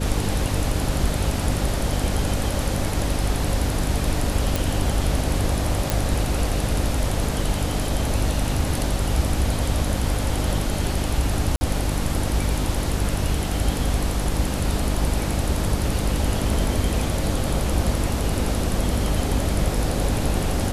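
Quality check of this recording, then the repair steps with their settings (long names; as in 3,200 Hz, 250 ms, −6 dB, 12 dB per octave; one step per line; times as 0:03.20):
mains hum 50 Hz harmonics 6 −27 dBFS
0:04.56: click
0:05.90: click
0:11.56–0:11.61: drop-out 50 ms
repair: click removal
hum removal 50 Hz, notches 6
repair the gap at 0:11.56, 50 ms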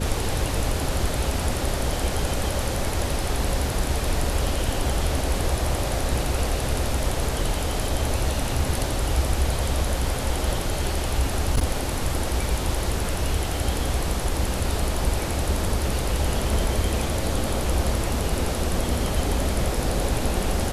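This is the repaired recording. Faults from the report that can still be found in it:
none of them is left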